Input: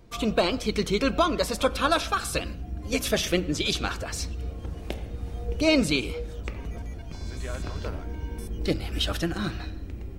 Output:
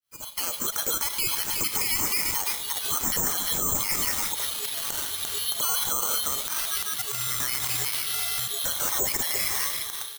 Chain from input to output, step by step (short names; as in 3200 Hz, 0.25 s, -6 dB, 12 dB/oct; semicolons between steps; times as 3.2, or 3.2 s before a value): opening faded in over 2.53 s; AGC gain up to 6 dB; HPF 330 Hz 6 dB/oct; compressor 1.5:1, threshold -35 dBFS, peak gain reduction 8 dB; bell 2300 Hz +8.5 dB 2.4 oct; inverted band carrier 3600 Hz; air absorption 380 m; notch 700 Hz, Q 12; echo 0.346 s -15 dB; careless resampling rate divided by 6×, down none, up zero stuff; maximiser +15 dB; gain -9 dB